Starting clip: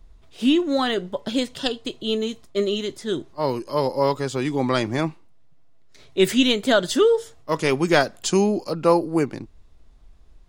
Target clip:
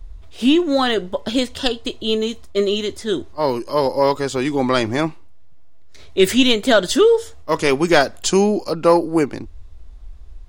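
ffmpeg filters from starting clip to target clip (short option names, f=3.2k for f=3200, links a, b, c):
-filter_complex "[0:a]lowshelf=f=100:t=q:w=3:g=7.5,asplit=2[a][b];[b]acontrast=68,volume=-2dB[c];[a][c]amix=inputs=2:normalize=0,equalizer=f=68:t=o:w=0.42:g=-5,volume=-3.5dB"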